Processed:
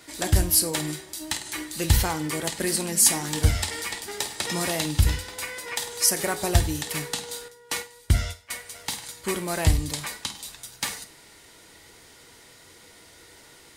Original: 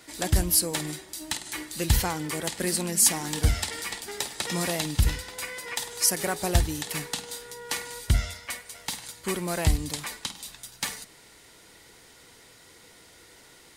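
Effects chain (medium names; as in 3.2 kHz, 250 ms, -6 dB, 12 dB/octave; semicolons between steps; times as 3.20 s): 7.48–8.51 s: gate -33 dBFS, range -14 dB; gated-style reverb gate 130 ms falling, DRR 9 dB; trim +1.5 dB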